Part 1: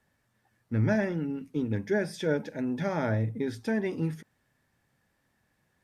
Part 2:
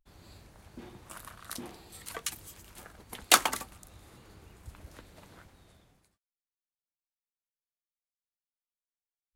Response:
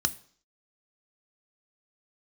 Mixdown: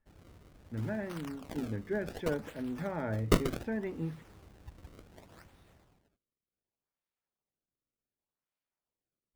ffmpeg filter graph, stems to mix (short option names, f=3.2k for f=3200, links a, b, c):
-filter_complex "[0:a]lowpass=2.4k,dynaudnorm=f=820:g=3:m=5dB,volume=-11.5dB[a];[1:a]acrusher=samples=30:mix=1:aa=0.000001:lfo=1:lforange=48:lforate=0.67,volume=-2dB[b];[a][b]amix=inputs=2:normalize=0,asoftclip=type=tanh:threshold=-12.5dB"